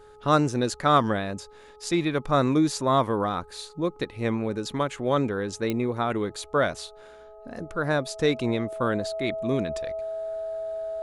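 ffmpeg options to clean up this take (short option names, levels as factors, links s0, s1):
-af "adeclick=t=4,bandreject=f=422.6:t=h:w=4,bandreject=f=845.2:t=h:w=4,bandreject=f=1267.8:t=h:w=4,bandreject=f=650:w=30"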